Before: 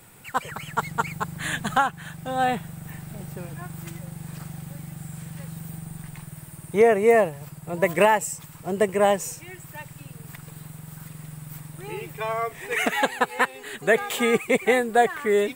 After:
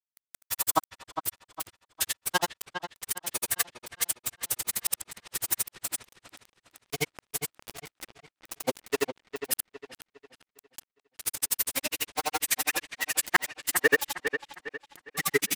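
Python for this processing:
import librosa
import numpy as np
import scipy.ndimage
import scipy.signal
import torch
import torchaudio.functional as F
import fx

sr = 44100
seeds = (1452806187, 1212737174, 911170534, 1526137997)

p1 = x + 0.5 * 10.0 ** (-14.0 / 20.0) * np.diff(np.sign(x), prepend=np.sign(x[:1]))
p2 = scipy.signal.sosfilt(scipy.signal.butter(2, 400.0, 'highpass', fs=sr, output='sos'), p1)
p3 = fx.dereverb_blind(p2, sr, rt60_s=1.6)
p4 = fx.dynamic_eq(p3, sr, hz=610.0, q=2.4, threshold_db=-33.0, ratio=4.0, max_db=-4)
p5 = fx.rotary(p4, sr, hz=8.0)
p6 = fx.pitch_keep_formants(p5, sr, semitones=-6.5)
p7 = fx.gate_flip(p6, sr, shuts_db=-16.0, range_db=-33)
p8 = fx.quant_dither(p7, sr, seeds[0], bits=6, dither='none')
p9 = fx.granulator(p8, sr, seeds[1], grain_ms=50.0, per_s=12.0, spray_ms=100.0, spread_st=0)
p10 = p9 + fx.echo_wet_lowpass(p9, sr, ms=407, feedback_pct=37, hz=3500.0, wet_db=-8.5, dry=0)
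y = F.gain(torch.from_numpy(p10), 9.0).numpy()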